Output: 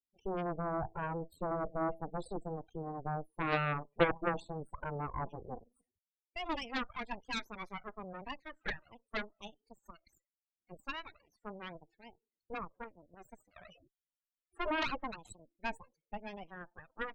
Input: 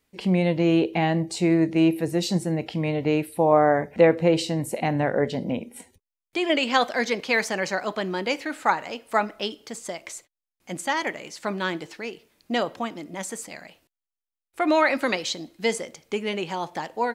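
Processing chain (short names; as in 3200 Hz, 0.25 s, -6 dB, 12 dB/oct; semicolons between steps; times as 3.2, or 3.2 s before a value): loudest bins only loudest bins 8; added harmonics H 3 -9 dB, 8 -19 dB, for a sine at -6 dBFS; 13.56–14.96 fast leveller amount 50%; gain -6 dB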